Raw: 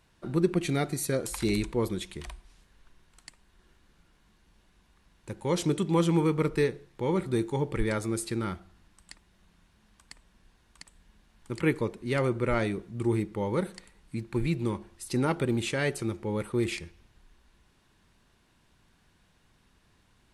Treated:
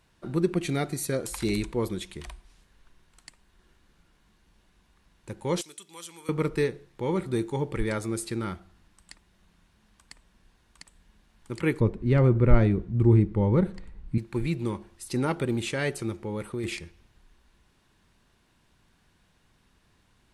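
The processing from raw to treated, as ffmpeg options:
-filter_complex "[0:a]asettb=1/sr,asplit=3[s0][s1][s2];[s0]atrim=end=5.614[s3];[s1]atrim=start=5.61:end=6.29,asetpts=PTS-STARTPTS,afade=t=in:d=0.004:c=qsin,afade=t=out:st=0.676:d=0.004:c=qsin,aderivative[s4];[s2]atrim=start=6.286[s5];[s3][s4]acrossfade=d=0.004:c1=hsin:c2=qsin[s6];[s6][s5]acrossfade=d=0.004:c1=qsin:c2=hsin,asettb=1/sr,asplit=3[s7][s8][s9];[s7]atrim=end=11.804[s10];[s8]atrim=start=11.8:end=14.18,asetpts=PTS-STARTPTS,afade=t=in:d=0.004:c=qsin,afade=t=out:st=2.376:d=0.004:c=qsin,aemphasis=mode=reproduction:type=riaa[s11];[s9]atrim=start=14.176[s12];[s10][s11]acrossfade=d=0.004:c1=hsin:c2=qsin[s13];[s13][s12]acrossfade=d=0.004:c1=qsin:c2=hsin,asettb=1/sr,asplit=3[s14][s15][s16];[s14]atrim=end=16.234[s17];[s15]atrim=start=16.23:end=16.64,asetpts=PTS-STARTPTS,afade=t=in:d=0.004:c=qsin,afade=t=out:st=0.406:d=0.004:c=qsin,acompressor=threshold=0.0398:ratio=4:attack=3.2:release=140:knee=1:detection=peak[s18];[s16]atrim=start=16.636[s19];[s17][s18]acrossfade=d=0.004:c1=hsin:c2=qsin[s20];[s20][s19]acrossfade=d=0.004:c1=qsin:c2=hsin"

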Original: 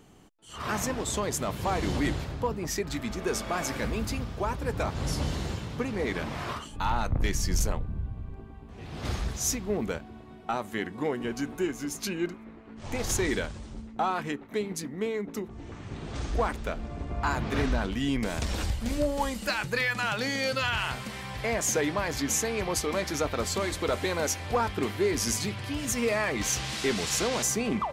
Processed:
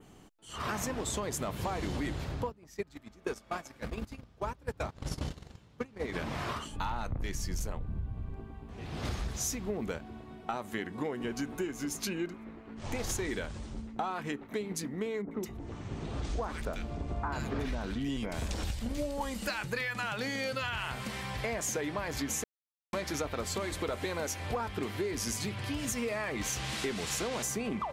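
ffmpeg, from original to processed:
-filter_complex "[0:a]asplit=3[s0][s1][s2];[s0]afade=t=out:st=2.47:d=0.02[s3];[s1]agate=range=0.0708:threshold=0.0355:ratio=16:release=100:detection=peak,afade=t=in:st=2.47:d=0.02,afade=t=out:st=6.12:d=0.02[s4];[s2]afade=t=in:st=6.12:d=0.02[s5];[s3][s4][s5]amix=inputs=3:normalize=0,asettb=1/sr,asplit=3[s6][s7][s8];[s6]atrim=end=15.224[s9];[s7]atrim=start=15.22:end=19.21,asetpts=PTS-STARTPTS,afade=t=in:d=0.004:c=qsin,afade=t=out:st=3.986:d=0.004:c=qsin,acrossover=split=1700[s10][s11];[s11]adelay=90[s12];[s10][s12]amix=inputs=2:normalize=0,atrim=end_sample=175959[s13];[s8]atrim=start=19.206[s14];[s9][s13]acrossfade=d=0.004:c1=hsin:c2=qsin[s15];[s15][s14]acrossfade=d=0.004:c1=qsin:c2=hsin,asplit=3[s16][s17][s18];[s16]atrim=end=22.44,asetpts=PTS-STARTPTS,afade=t=out:st=22.436:d=0.004:c=hsin[s19];[s17]atrim=start=22.44:end=22.93,asetpts=PTS-STARTPTS,volume=0[s20];[s18]atrim=start=22.93,asetpts=PTS-STARTPTS,afade=t=in:d=0.004:c=hsin[s21];[s19][s20][s21]concat=n=3:v=0:a=1,adynamicequalizer=threshold=0.00708:dfrequency=5300:dqfactor=1.2:tfrequency=5300:tqfactor=1.2:attack=5:release=100:ratio=0.375:range=2:mode=cutabove:tftype=bell,acompressor=threshold=0.0282:ratio=6"

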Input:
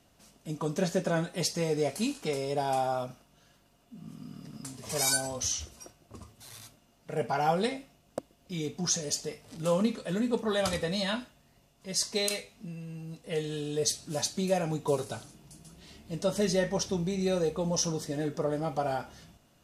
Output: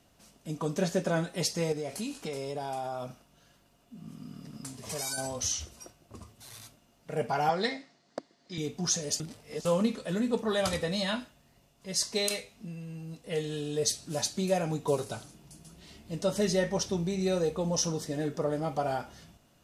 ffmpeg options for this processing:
-filter_complex "[0:a]asettb=1/sr,asplit=3[s0][s1][s2];[s0]atrim=end=1.724[s3];[s1]atrim=start=1.72:end=5.18,asetpts=PTS-STARTPTS,afade=t=in:d=0.004:c=qsin,afade=t=out:st=3.456:d=0.004:c=qsin,acompressor=threshold=0.0251:ratio=4:attack=3.2:release=140:knee=1:detection=peak[s4];[s2]atrim=start=5.176[s5];[s3][s4]acrossfade=d=0.004:c1=hsin:c2=qsin[s6];[s6][s5]acrossfade=d=0.004:c1=qsin:c2=hsin,asettb=1/sr,asplit=3[s7][s8][s9];[s7]atrim=end=7.494[s10];[s8]atrim=start=7.49:end=8.58,asetpts=PTS-STARTPTS,afade=t=in:d=0.004:c=qsin,afade=t=out:st=1.086:d=0.004:c=qsin,highpass=220,equalizer=f=530:t=q:w=4:g=-4,equalizer=f=1900:t=q:w=4:g=9,equalizer=f=2700:t=q:w=4:g=-8,equalizer=f=4400:t=q:w=4:g=9,lowpass=f=7000:w=0.5412,lowpass=f=7000:w=1.3066[s11];[s9]atrim=start=8.576[s12];[s10][s11]acrossfade=d=0.004:c1=hsin:c2=qsin[s13];[s13][s12]acrossfade=d=0.004:c1=qsin:c2=hsin,asplit=3[s14][s15][s16];[s14]atrim=end=9.202[s17];[s15]atrim=start=9.198:end=9.652,asetpts=PTS-STARTPTS,areverse[s18];[s16]atrim=start=9.648[s19];[s17][s18]acrossfade=d=0.004:c1=hsin:c2=hsin[s20];[s20][s19]acrossfade=d=0.004:c1=hsin:c2=hsin"

